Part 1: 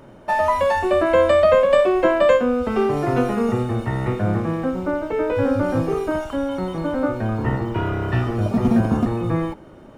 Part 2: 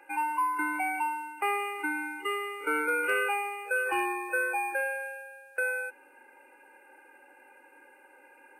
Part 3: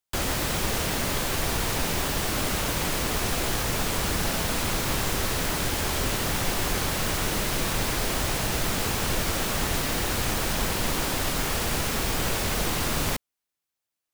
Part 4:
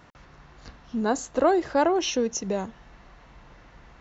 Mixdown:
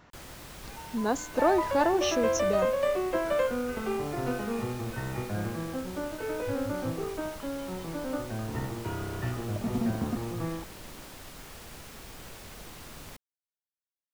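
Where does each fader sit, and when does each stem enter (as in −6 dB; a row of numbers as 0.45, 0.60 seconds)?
−12.0, −17.0, −19.0, −3.5 decibels; 1.10, 0.60, 0.00, 0.00 seconds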